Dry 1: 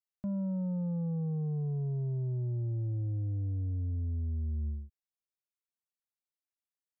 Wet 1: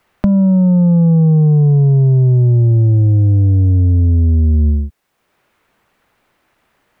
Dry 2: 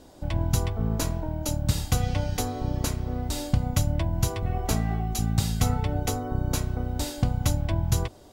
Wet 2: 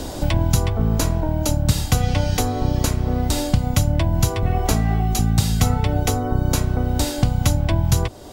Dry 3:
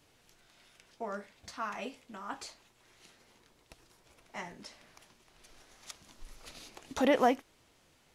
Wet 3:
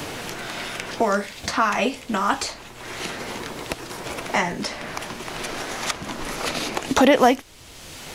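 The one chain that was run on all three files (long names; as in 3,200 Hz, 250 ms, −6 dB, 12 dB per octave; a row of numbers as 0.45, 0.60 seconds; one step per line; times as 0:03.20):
multiband upward and downward compressor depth 70%
normalise the peak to −3 dBFS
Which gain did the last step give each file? +22.0, +6.5, +20.0 decibels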